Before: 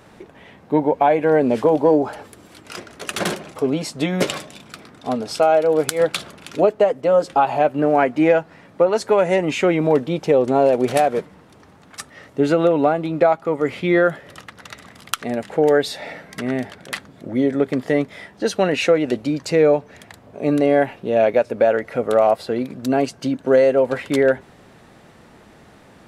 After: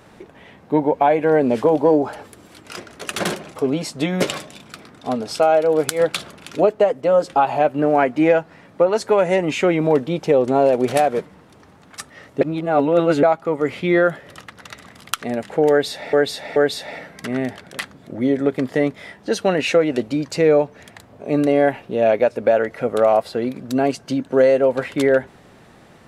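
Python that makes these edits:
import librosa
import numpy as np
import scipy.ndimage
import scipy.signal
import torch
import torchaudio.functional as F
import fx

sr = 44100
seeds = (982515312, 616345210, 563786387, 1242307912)

y = fx.edit(x, sr, fx.reverse_span(start_s=12.41, length_s=0.82),
    fx.repeat(start_s=15.7, length_s=0.43, count=3), tone=tone)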